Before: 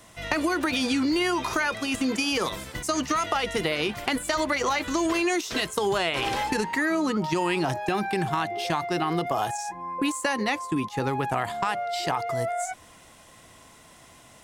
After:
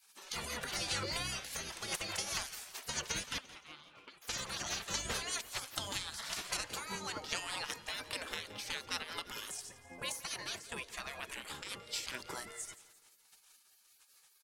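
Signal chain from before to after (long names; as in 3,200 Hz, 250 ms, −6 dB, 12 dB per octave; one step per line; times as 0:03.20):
0:03.38–0:04.22: formant filter a
rotating-speaker cabinet horn 5 Hz
gate on every frequency bin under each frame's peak −20 dB weak
repeating echo 172 ms, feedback 47%, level −17.5 dB
level +1 dB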